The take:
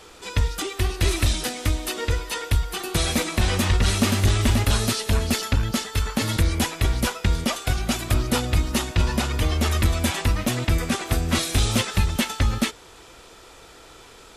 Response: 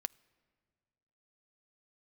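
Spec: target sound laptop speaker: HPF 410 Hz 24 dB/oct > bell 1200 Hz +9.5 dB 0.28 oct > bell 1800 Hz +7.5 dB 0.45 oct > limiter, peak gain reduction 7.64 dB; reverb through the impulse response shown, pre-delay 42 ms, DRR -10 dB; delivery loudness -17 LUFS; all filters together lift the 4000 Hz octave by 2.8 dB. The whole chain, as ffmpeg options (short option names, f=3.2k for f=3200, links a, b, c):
-filter_complex "[0:a]equalizer=f=4k:t=o:g=3,asplit=2[a][b];[1:a]atrim=start_sample=2205,adelay=42[c];[b][c]afir=irnorm=-1:irlink=0,volume=11.5dB[d];[a][d]amix=inputs=2:normalize=0,highpass=f=410:w=0.5412,highpass=f=410:w=1.3066,equalizer=f=1.2k:t=o:w=0.28:g=9.5,equalizer=f=1.8k:t=o:w=0.45:g=7.5,volume=-1dB,alimiter=limit=-7dB:level=0:latency=1"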